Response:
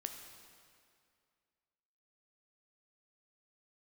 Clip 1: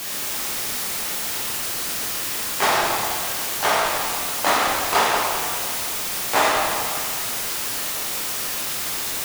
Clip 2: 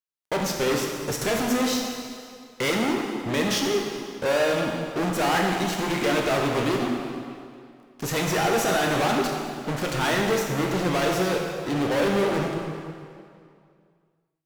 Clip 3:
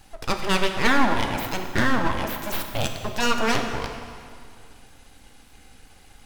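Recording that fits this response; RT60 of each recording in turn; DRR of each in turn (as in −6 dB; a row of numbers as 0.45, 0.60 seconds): 3; 2.3, 2.3, 2.3 seconds; −5.0, 0.0, 4.5 decibels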